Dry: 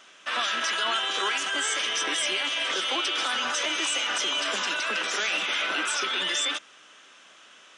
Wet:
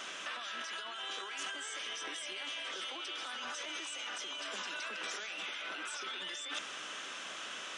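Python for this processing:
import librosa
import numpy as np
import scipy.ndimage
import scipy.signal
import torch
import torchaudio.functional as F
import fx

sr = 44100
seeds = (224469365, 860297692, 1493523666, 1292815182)

y = fx.over_compress(x, sr, threshold_db=-39.0, ratio=-1.0)
y = y * 10.0 ** (-2.5 / 20.0)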